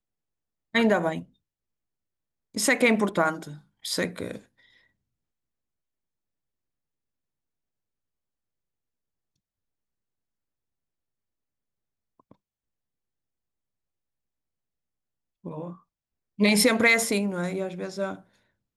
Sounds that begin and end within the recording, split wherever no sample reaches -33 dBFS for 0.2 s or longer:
0.75–1.20 s
2.56–3.52 s
3.85–4.37 s
15.46–15.71 s
16.39–18.15 s

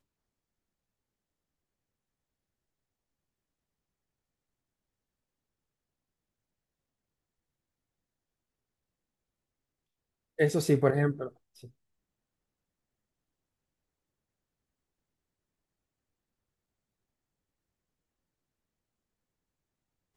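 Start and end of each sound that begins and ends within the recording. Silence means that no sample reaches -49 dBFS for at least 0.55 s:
10.39–11.67 s

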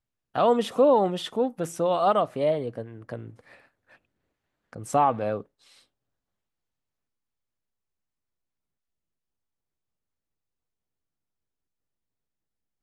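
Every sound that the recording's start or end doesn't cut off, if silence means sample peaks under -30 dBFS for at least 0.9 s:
4.73–5.41 s

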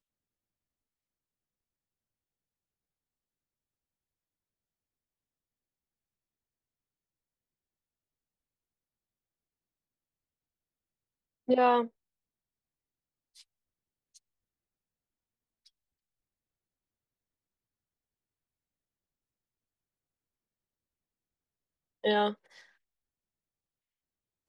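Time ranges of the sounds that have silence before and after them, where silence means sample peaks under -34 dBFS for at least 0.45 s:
11.49–11.85 s
22.04–22.31 s

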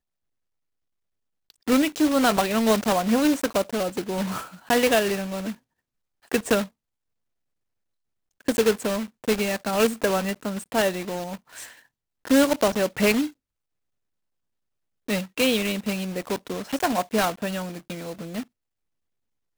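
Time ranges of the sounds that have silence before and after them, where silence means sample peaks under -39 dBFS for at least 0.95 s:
1.50–6.67 s
8.41–13.29 s
15.08–18.43 s

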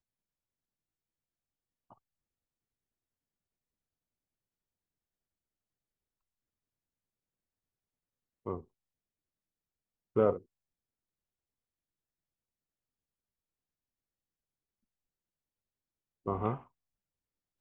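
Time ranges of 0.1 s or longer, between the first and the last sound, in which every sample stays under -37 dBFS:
8.58–10.16 s
10.36–16.26 s

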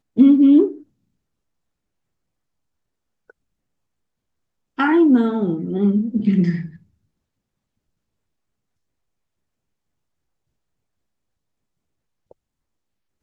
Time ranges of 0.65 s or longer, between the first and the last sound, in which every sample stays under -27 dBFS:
0.72–4.79 s

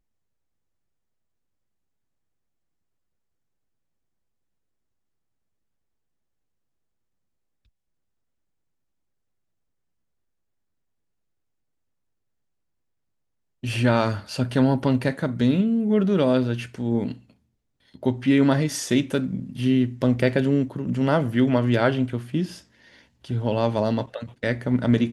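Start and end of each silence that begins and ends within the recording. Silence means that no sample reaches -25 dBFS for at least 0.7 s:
17.12–18.03 s
22.45–23.31 s

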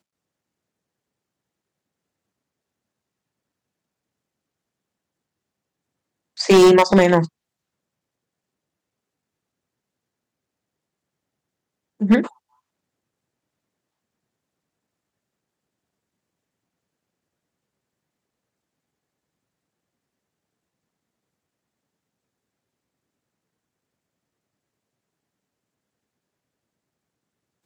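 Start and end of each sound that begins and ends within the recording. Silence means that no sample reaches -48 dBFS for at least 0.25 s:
6.37–7.29 s
12.00–12.33 s

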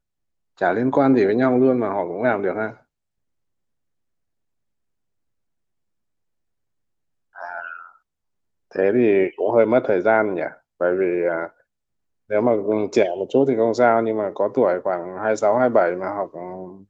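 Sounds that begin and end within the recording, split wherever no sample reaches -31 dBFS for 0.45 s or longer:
0.61–2.71 s
7.38–7.79 s
8.75–11.47 s

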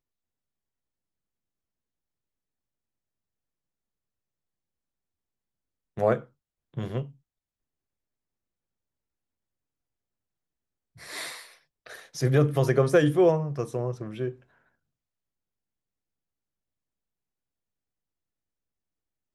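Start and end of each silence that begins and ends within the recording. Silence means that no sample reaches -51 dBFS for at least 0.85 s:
7.12–10.96 s

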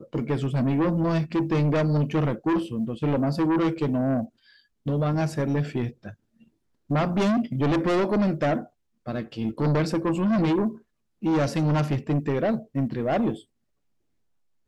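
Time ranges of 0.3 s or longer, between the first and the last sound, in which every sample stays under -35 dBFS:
4.25–4.86 s
6.11–6.90 s
8.64–9.07 s
10.75–11.23 s

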